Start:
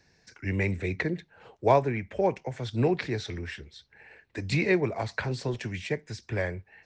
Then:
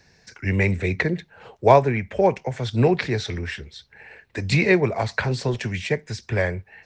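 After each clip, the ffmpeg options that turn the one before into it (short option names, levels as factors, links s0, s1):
-af "equalizer=f=310:w=4.7:g=-5.5,volume=2.37"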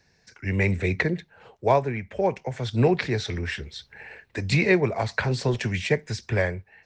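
-af "dynaudnorm=f=160:g=7:m=3.55,volume=0.447"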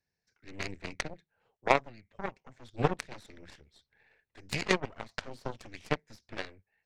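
-af "aeval=exprs='0.422*(cos(1*acos(clip(val(0)/0.422,-1,1)))-cos(1*PI/2))+0.15*(cos(3*acos(clip(val(0)/0.422,-1,1)))-cos(3*PI/2))+0.0075*(cos(8*acos(clip(val(0)/0.422,-1,1)))-cos(8*PI/2))':c=same"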